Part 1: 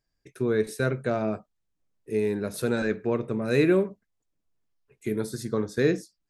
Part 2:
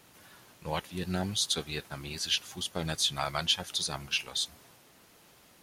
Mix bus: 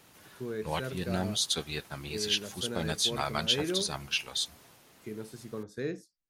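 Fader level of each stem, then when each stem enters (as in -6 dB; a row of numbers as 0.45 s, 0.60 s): -12.0 dB, 0.0 dB; 0.00 s, 0.00 s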